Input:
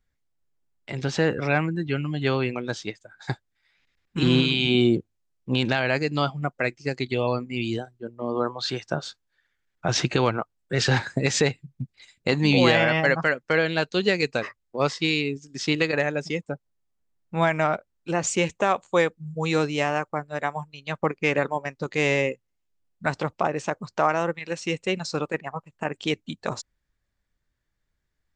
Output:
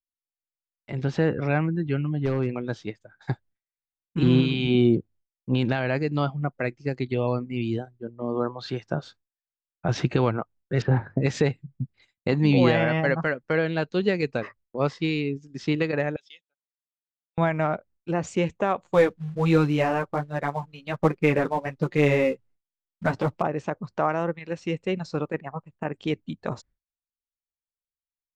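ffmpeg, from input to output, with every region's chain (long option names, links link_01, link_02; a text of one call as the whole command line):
ffmpeg -i in.wav -filter_complex "[0:a]asettb=1/sr,asplit=3[link_01][link_02][link_03];[link_01]atrim=end=2.094[link_04];[link_02]atrim=start=2.09:end=2.49,asetpts=PTS-STARTPTS,afade=type=in:duration=0.004:curve=qsin,afade=type=out:start_time=0.396:duration=0.004:curve=qsin,lowpass=frequency=1500:poles=1,aeval=exprs='0.15*(abs(mod(val(0)/0.15+3,4)-2)-1)':channel_layout=same[link_05];[link_03]atrim=start=2.486[link_06];[link_04][link_05]acrossfade=duration=0.004:curve1=hsin:curve2=qsin[link_07];[link_07][link_06]acrossfade=duration=0.004:curve1=qsin:curve2=hsin,asettb=1/sr,asplit=3[link_08][link_09][link_10];[link_08]atrim=end=10.824[link_11];[link_09]atrim=start=10.82:end=11.22,asetpts=PTS-STARTPTS,afade=type=in:duration=0.004:curve=qsin,afade=type=out:start_time=0.396:duration=0.004:curve=qsin,lowpass=1200,bandreject=frequency=50:width_type=h:width=6,bandreject=frequency=100:width_type=h:width=6,bandreject=frequency=150:width_type=h:width=6[link_12];[link_10]atrim=start=11.216[link_13];[link_11][link_12]acrossfade=duration=0.004:curve1=hsin:curve2=qsin[link_14];[link_14][link_13]acrossfade=duration=0.004:curve1=qsin:curve2=hsin,asettb=1/sr,asplit=3[link_15][link_16][link_17];[link_15]atrim=end=16.164[link_18];[link_16]atrim=start=16.16:end=17.38,asetpts=PTS-STARTPTS,afade=type=in:duration=0.004:curve=qsin,afade=type=out:start_time=1.216:duration=0.004:curve=qsin,bandpass=frequency=3400:width_type=q:width=7.2,aemphasis=mode=production:type=riaa[link_19];[link_17]atrim=start=17.376[link_20];[link_18][link_19]acrossfade=duration=0.004:curve1=hsin:curve2=qsin[link_21];[link_21][link_20]acrossfade=duration=0.004:curve1=qsin:curve2=hsin,asettb=1/sr,asplit=3[link_22][link_23][link_24];[link_22]atrim=end=18.844[link_25];[link_23]atrim=start=18.84:end=23.42,asetpts=PTS-STARTPTS,afade=type=in:duration=0.004:curve=qsin,afade=type=out:start_time=4.576:duration=0.004:curve=qsin,acontrast=74,flanger=delay=5.6:depth=5.5:regen=-8:speed=1.3:shape=sinusoidal,acrusher=bits=4:mode=log:mix=0:aa=0.000001[link_26];[link_24]atrim=start=23.416[link_27];[link_25][link_26]acrossfade=duration=0.004:curve1=hsin:curve2=qsin[link_28];[link_28][link_27]acrossfade=duration=0.004:curve1=qsin:curve2=hsin,aemphasis=mode=reproduction:type=75fm,agate=range=-33dB:threshold=-47dB:ratio=3:detection=peak,lowshelf=frequency=380:gain=6,volume=-4dB" out.wav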